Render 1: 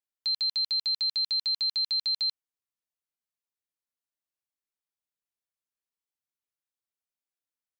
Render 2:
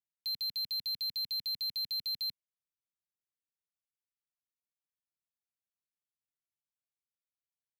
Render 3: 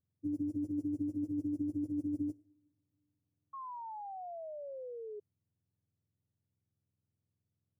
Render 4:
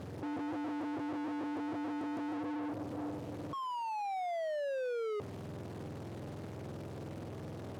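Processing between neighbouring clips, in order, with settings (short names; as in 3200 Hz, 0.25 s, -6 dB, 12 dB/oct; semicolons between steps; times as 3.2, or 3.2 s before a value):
elliptic band-stop 220–2100 Hz; bell 110 Hz +13 dB 2.4 oct; sample leveller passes 2; gain -8.5 dB
spectrum mirrored in octaves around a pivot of 1100 Hz; two-slope reverb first 0.52 s, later 2.4 s, from -19 dB, DRR 18.5 dB; painted sound fall, 3.53–5.2, 410–1100 Hz -44 dBFS
infinite clipping; band-pass 540 Hz, Q 0.65; gain +6 dB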